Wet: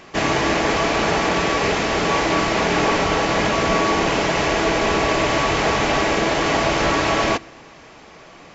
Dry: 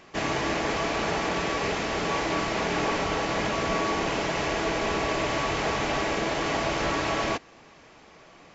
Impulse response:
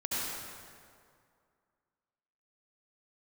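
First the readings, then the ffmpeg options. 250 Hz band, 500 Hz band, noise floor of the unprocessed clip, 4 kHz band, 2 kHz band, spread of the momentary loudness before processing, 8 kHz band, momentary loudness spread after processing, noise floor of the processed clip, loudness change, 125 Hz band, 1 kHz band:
+8.0 dB, +8.0 dB, −52 dBFS, +8.0 dB, +8.0 dB, 1 LU, can't be measured, 1 LU, −44 dBFS, +8.0 dB, +8.0 dB, +8.0 dB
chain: -filter_complex "[0:a]asplit=2[link_01][link_02];[1:a]atrim=start_sample=2205,asetrate=57330,aresample=44100[link_03];[link_02][link_03]afir=irnorm=-1:irlink=0,volume=-28.5dB[link_04];[link_01][link_04]amix=inputs=2:normalize=0,volume=8dB"

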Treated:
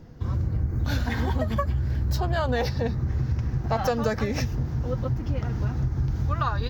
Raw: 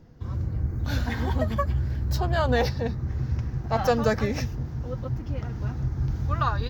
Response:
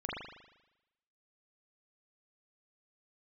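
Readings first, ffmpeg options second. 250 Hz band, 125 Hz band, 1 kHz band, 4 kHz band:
+0.5 dB, +1.5 dB, −1.0 dB, −0.5 dB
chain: -af "acompressor=threshold=-27dB:ratio=5,volume=5.5dB"

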